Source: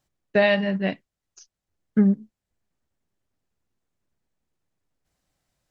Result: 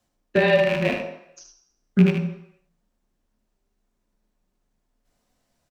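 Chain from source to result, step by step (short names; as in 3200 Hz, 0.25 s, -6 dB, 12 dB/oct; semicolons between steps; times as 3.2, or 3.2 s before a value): rattling part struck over -35 dBFS, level -15 dBFS; notches 50/100/150/200 Hz; in parallel at 0 dB: compressor, threshold -28 dBFS, peak gain reduction 13 dB; on the sum: frequency shift -30 Hz; echo 76 ms -7 dB; on a send at -1 dB: reverb RT60 0.75 s, pre-delay 3 ms; on the sum: gain -4 dB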